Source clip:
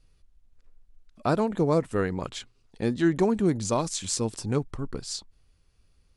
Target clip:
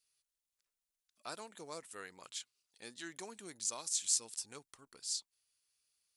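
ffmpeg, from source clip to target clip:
-af "aderivative,volume=-1.5dB"

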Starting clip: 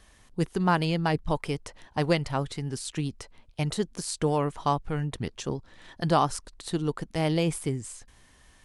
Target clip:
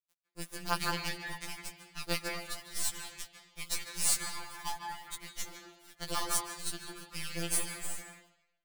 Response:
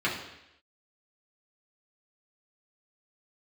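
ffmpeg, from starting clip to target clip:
-filter_complex "[0:a]aderivative,acrusher=bits=6:dc=4:mix=0:aa=0.000001,asplit=2[a][b];[1:a]atrim=start_sample=2205,adelay=146[c];[b][c]afir=irnorm=-1:irlink=0,volume=-13.5dB[d];[a][d]amix=inputs=2:normalize=0,afftfilt=real='re*2.83*eq(mod(b,8),0)':imag='im*2.83*eq(mod(b,8),0)':win_size=2048:overlap=0.75,volume=8dB"

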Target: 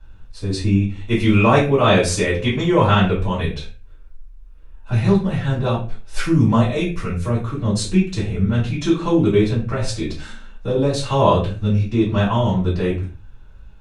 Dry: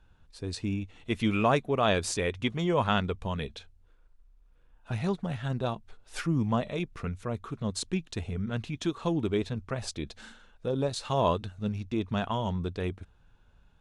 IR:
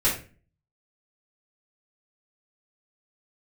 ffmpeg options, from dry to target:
-filter_complex "[0:a]asettb=1/sr,asplit=3[a][b][c];[a]atrim=end=6.234[d];[b]atrim=start=6.23:end=7.26,asetpts=PTS-STARTPTS,afade=t=in:d=0.004:c=qsin,afade=t=out:st=1.026:d=0.004:c=qsin,highshelf=f=5.7k:g=8.5[e];[c]atrim=start=7.256[f];[d][e]acrossfade=d=0.004:c1=hsin:c2=qsin[g];[g][f]acrossfade=d=0.004:c1=qsin:c2=hsin[h];[1:a]atrim=start_sample=2205,afade=t=out:st=0.32:d=0.01,atrim=end_sample=14553[i];[h][i]afir=irnorm=-1:irlink=0,volume=-2dB"

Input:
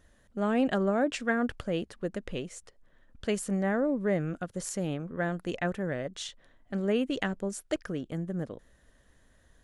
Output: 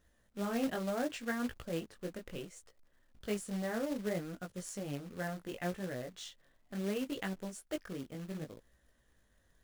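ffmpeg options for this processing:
-af "flanger=delay=16:depth=6.4:speed=0.68,acrusher=bits=3:mode=log:mix=0:aa=0.000001,volume=-5.5dB"

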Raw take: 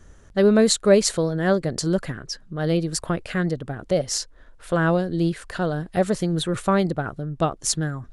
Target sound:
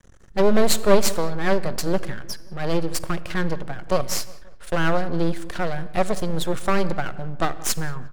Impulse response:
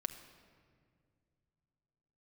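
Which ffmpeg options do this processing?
-filter_complex "[0:a]aeval=exprs='max(val(0),0)':c=same,asplit=2[a][b];[b]adelay=177,lowpass=f=2.1k:p=1,volume=-19.5dB,asplit=2[c][d];[d]adelay=177,lowpass=f=2.1k:p=1,volume=0.51,asplit=2[e][f];[f]adelay=177,lowpass=f=2.1k:p=1,volume=0.51,asplit=2[g][h];[h]adelay=177,lowpass=f=2.1k:p=1,volume=0.51[i];[a][c][e][g][i]amix=inputs=5:normalize=0,asplit=2[j][k];[1:a]atrim=start_sample=2205,afade=t=out:st=0.28:d=0.01,atrim=end_sample=12789[l];[k][l]afir=irnorm=-1:irlink=0,volume=1dB[m];[j][m]amix=inputs=2:normalize=0,volume=-2.5dB"

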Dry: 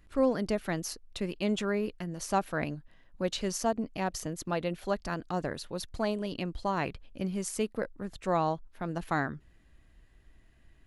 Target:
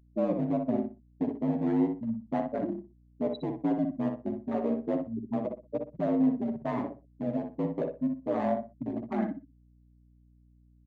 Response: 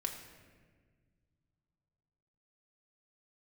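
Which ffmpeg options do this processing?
-filter_complex "[0:a]bandreject=f=700:w=23,afftfilt=real='re*gte(hypot(re,im),0.126)':imag='im*gte(hypot(re,im),0.126)':win_size=1024:overlap=0.75,lowshelf=f=410:g=12,dynaudnorm=f=100:g=5:m=11dB,alimiter=limit=-9.5dB:level=0:latency=1:release=18,asoftclip=type=hard:threshold=-15dB,aeval=exprs='val(0)*sin(2*PI*56*n/s)':c=same,highpass=f=170:w=0.5412,highpass=f=170:w=1.3066,equalizer=f=280:t=q:w=4:g=6,equalizer=f=630:t=q:w=4:g=8,equalizer=f=1.4k:t=q:w=4:g=-6,equalizer=f=2k:t=q:w=4:g=4,equalizer=f=5.3k:t=q:w=4:g=-7,lowpass=f=7.2k:w=0.5412,lowpass=f=7.2k:w=1.3066,flanger=delay=3.9:depth=8.9:regen=10:speed=0.32:shape=triangular,asplit=2[a][b];[b]adelay=61,lowpass=f=2k:p=1,volume=-4.5dB,asplit=2[c][d];[d]adelay=61,lowpass=f=2k:p=1,volume=0.24,asplit=2[e][f];[f]adelay=61,lowpass=f=2k:p=1,volume=0.24[g];[a][c][e][g]amix=inputs=4:normalize=0,aeval=exprs='val(0)+0.00224*(sin(2*PI*60*n/s)+sin(2*PI*2*60*n/s)/2+sin(2*PI*3*60*n/s)/3+sin(2*PI*4*60*n/s)/4+sin(2*PI*5*60*n/s)/5)':c=same,volume=-6dB"

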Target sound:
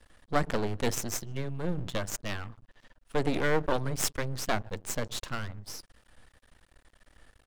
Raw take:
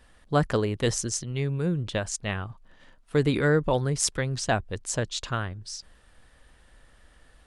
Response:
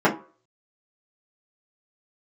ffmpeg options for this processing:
-filter_complex "[0:a]asplit=2[a][b];[b]adelay=150,highpass=300,lowpass=3.4k,asoftclip=type=hard:threshold=-15.5dB,volume=-28dB[c];[a][c]amix=inputs=2:normalize=0,asplit=2[d][e];[1:a]atrim=start_sample=2205,atrim=end_sample=4410,asetrate=23373,aresample=44100[f];[e][f]afir=irnorm=-1:irlink=0,volume=-42dB[g];[d][g]amix=inputs=2:normalize=0,aeval=exprs='max(val(0),0)':c=same"

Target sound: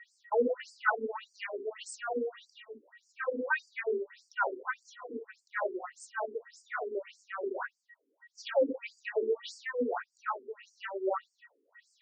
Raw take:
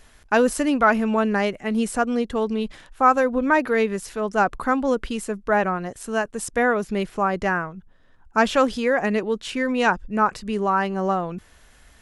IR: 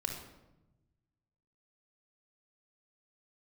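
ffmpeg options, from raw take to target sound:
-filter_complex "[0:a]asettb=1/sr,asplit=3[a][b][c];[a]atrim=end=2.584[d];[b]atrim=start=2.58:end=3.36,asetpts=PTS-STARTPTS,afade=t=in:d=0.004:c=qsin,afade=t=out:st=0.776:d=0.004:c=qsin,acrossover=split=2600[e][f];[f]acompressor=threshold=-52dB:ratio=4:attack=1:release=60[g];[e][g]amix=inputs=2:normalize=0[h];[c]atrim=start=3.356[i];[d][h]acrossfade=d=0.004:c1=hsin:c2=qsin[j];[j][i]acrossfade=d=0.004:c1=qsin:c2=hsin,aeval=exprs='val(0)+0.00708*sin(2*PI*1900*n/s)':c=same,acrusher=bits=10:mix=0:aa=0.000001[k];[1:a]atrim=start_sample=2205,atrim=end_sample=6174[l];[k][l]afir=irnorm=-1:irlink=0,afftfilt=real='re*between(b*sr/1024,330*pow(6400/330,0.5+0.5*sin(2*PI*1.7*pts/sr))/1.41,330*pow(6400/330,0.5+0.5*sin(2*PI*1.7*pts/sr))*1.41)':imag='im*between(b*sr/1024,330*pow(6400/330,0.5+0.5*sin(2*PI*1.7*pts/sr))/1.41,330*pow(6400/330,0.5+0.5*sin(2*PI*1.7*pts/sr))*1.41)':win_size=1024:overlap=0.75,volume=-7.5dB"

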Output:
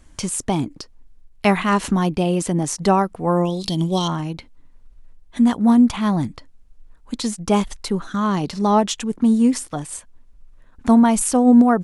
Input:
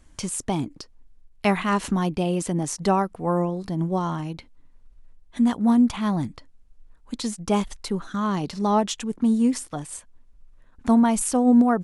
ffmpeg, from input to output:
-filter_complex "[0:a]asettb=1/sr,asplit=3[a][b][c];[a]atrim=end=3.454[d];[b]atrim=start=3.45:end=4.08,asetpts=PTS-STARTPTS,afade=t=in:d=0.004:c=qsin,afade=t=out:st=0.626:d=0.004:c=qsin,highshelf=f=2.3k:t=q:w=3:g=12[e];[c]atrim=start=4.076[f];[d][e]acrossfade=d=0.004:c1=hsin:c2=qsin[g];[g][f]acrossfade=d=0.004:c1=qsin:c2=hsin,volume=4.5dB"

